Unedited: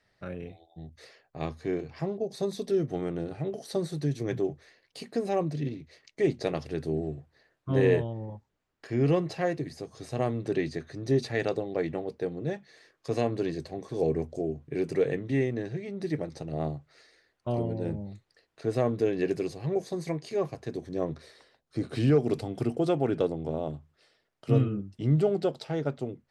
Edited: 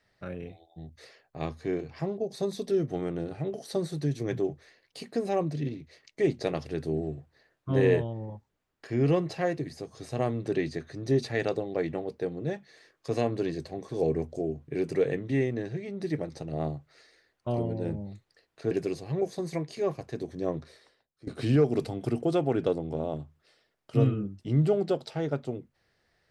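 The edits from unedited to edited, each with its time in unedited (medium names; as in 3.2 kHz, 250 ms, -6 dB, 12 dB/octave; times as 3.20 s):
18.71–19.25 s: delete
21.06–21.81 s: fade out, to -21 dB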